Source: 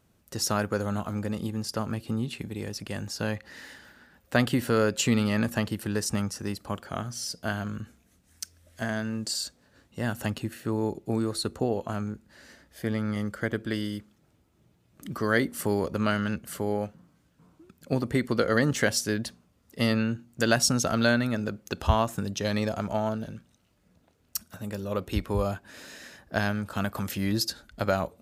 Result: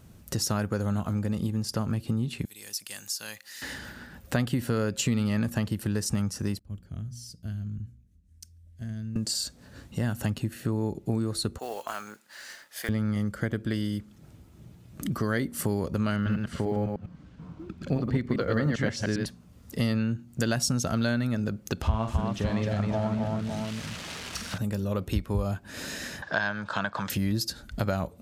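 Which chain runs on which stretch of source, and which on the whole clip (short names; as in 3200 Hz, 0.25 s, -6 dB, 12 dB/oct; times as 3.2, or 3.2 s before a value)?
2.45–3.62 differentiator + mismatched tape noise reduction encoder only
6.59–9.16 passive tone stack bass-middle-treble 10-0-1 + notches 60/120/180/240/300 Hz + mismatched tape noise reduction decoder only
11.58–12.89 HPF 950 Hz + modulation noise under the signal 19 dB
16.16–19.26 reverse delay 0.1 s, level -3 dB + LPF 4000 Hz + short-mantissa float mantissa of 6-bit
21.82–24.58 switching spikes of -24.5 dBFS + LPF 2800 Hz + tapped delay 45/263/562 ms -8.5/-4/-12 dB
26.22–27.1 speaker cabinet 210–6200 Hz, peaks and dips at 240 Hz -10 dB, 380 Hz -6 dB, 620 Hz +3 dB, 980 Hz +9 dB, 1600 Hz +10 dB, 3600 Hz +6 dB + mismatched tape noise reduction encoder only
whole clip: tone controls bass +8 dB, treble +2 dB; compressor 2.5:1, threshold -40 dBFS; gain +8.5 dB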